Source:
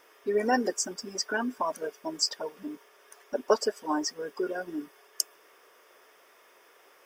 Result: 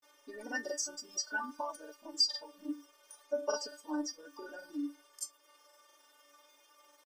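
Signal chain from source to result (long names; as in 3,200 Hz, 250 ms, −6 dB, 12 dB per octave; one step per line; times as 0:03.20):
octave-band graphic EQ 125/1,000/2,000/4,000/8,000 Hz −9/+3/−5/+6/+6 dB
in parallel at −2 dB: downward compressor, threshold −35 dBFS, peak gain reduction 18 dB
on the sum: stiff-string resonator 290 Hz, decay 0.24 s, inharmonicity 0.002
granular cloud, spray 28 ms, pitch spread up and down by 0 semitones
level +3 dB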